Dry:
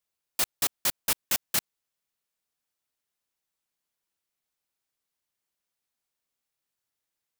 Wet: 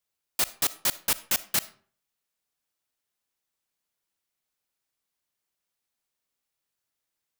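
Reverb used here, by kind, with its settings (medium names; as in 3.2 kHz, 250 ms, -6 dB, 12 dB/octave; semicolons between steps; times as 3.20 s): algorithmic reverb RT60 0.46 s, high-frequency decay 0.7×, pre-delay 15 ms, DRR 16.5 dB; trim +1 dB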